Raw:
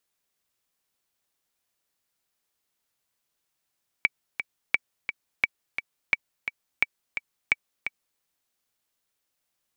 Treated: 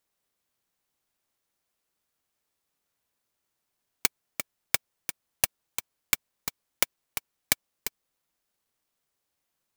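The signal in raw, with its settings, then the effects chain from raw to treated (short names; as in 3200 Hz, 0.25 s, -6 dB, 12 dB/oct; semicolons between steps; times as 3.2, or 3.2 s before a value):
metronome 173 bpm, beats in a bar 2, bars 6, 2290 Hz, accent 9 dB -6.5 dBFS
clock jitter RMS 0.11 ms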